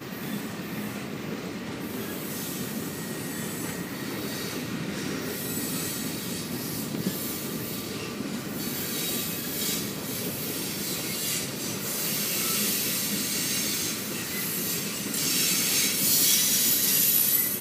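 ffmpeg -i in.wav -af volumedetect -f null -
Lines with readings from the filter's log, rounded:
mean_volume: -28.9 dB
max_volume: -9.9 dB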